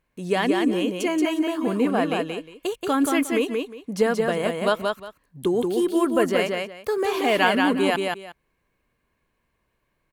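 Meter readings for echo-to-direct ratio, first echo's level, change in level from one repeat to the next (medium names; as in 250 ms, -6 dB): -3.5 dB, -3.5 dB, -13.5 dB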